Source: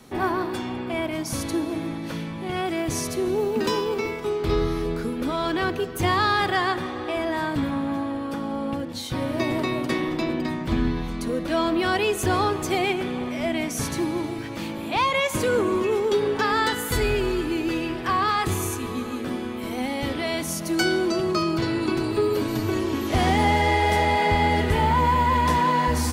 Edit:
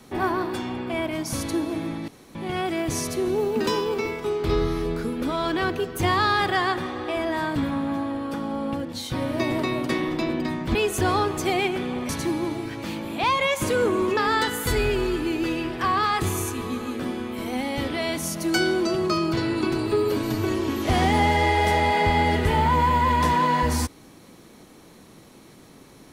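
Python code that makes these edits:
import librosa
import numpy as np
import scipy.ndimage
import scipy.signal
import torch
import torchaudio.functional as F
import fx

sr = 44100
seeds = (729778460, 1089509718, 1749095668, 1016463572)

y = fx.edit(x, sr, fx.room_tone_fill(start_s=2.08, length_s=0.27),
    fx.cut(start_s=10.75, length_s=1.25),
    fx.cut(start_s=13.34, length_s=0.48),
    fx.cut(start_s=15.9, length_s=0.52), tone=tone)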